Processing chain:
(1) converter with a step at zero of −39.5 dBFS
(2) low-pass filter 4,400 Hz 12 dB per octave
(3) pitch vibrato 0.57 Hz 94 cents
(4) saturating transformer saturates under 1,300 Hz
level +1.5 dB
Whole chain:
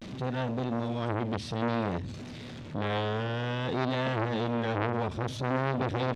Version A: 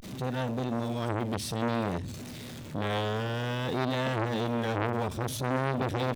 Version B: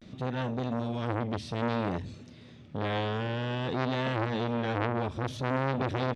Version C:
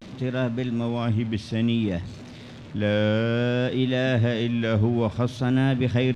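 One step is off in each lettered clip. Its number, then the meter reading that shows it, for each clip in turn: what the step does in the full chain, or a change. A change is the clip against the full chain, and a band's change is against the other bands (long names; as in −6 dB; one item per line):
2, 8 kHz band +10.0 dB
1, distortion level −23 dB
4, change in crest factor −6.5 dB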